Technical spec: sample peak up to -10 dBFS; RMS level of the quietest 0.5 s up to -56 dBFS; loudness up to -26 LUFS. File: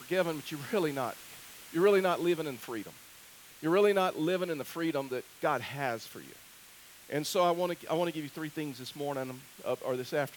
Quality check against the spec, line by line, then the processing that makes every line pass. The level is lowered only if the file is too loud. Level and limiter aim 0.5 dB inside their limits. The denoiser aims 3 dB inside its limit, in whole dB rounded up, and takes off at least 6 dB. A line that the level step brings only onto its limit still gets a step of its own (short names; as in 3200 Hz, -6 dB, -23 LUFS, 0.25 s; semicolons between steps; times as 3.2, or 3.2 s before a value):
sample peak -13.5 dBFS: OK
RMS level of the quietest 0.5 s -54 dBFS: fail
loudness -32.0 LUFS: OK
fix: denoiser 6 dB, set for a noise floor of -54 dBFS